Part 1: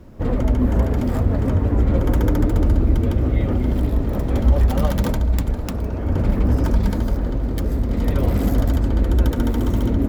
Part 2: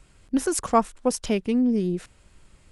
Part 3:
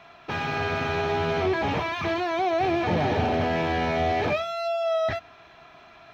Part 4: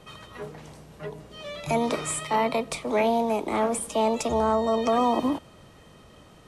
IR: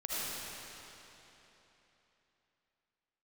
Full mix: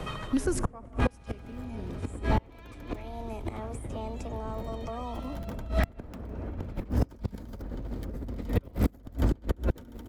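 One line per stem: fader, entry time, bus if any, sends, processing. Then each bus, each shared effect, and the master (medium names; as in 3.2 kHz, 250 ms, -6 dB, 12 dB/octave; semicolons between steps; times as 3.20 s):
-2.0 dB, 0.45 s, no send, compressor with a negative ratio -23 dBFS, ratio -1
-4.0 dB, 0.00 s, send -16 dB, none
-10.5 dB, 0.70 s, send -7.5 dB, compressor with a negative ratio -29 dBFS, ratio -0.5
+1.0 dB, 0.00 s, no send, auto duck -13 dB, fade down 0.60 s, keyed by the second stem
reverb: on, RT60 3.5 s, pre-delay 35 ms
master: level rider gain up to 8 dB; inverted gate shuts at -10 dBFS, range -31 dB; three bands compressed up and down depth 70%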